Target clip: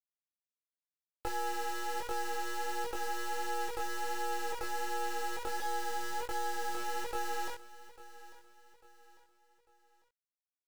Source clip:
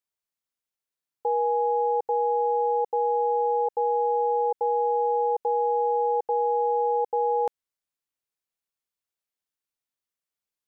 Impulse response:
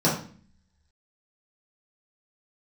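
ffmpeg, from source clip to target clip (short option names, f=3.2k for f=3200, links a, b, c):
-filter_complex "[0:a]asettb=1/sr,asplit=3[a][b][c];[a]atrim=end=5.604[d];[b]atrim=start=5.6:end=6.75,asetpts=PTS-STARTPTS,afade=t=in:d=0.004:c=qsin,afade=t=out:st=1.146:d=0.004:c=qsin,aemphasis=mode=production:type=riaa[e];[c]atrim=start=6.746[f];[d][e]acrossfade=d=0.004:c1=hsin:c2=qsin[g];[g][f]acrossfade=d=0.004:c1=qsin:c2=hsin,bandreject=f=60:t=h:w=6,bandreject=f=120:t=h:w=6,bandreject=f=180:t=h:w=6,bandreject=f=240:t=h:w=6,bandreject=f=300:t=h:w=6,bandreject=f=360:t=h:w=6,bandreject=f=420:t=h:w=6,bandreject=f=480:t=h:w=6,bandreject=f=540:t=h:w=6,acompressor=threshold=-32dB:ratio=16,acrusher=bits=4:dc=4:mix=0:aa=0.000001,flanger=delay=19:depth=3.2:speed=1.4,aecho=1:1:847|1694|2541:0.133|0.0547|0.0224,volume=4.5dB"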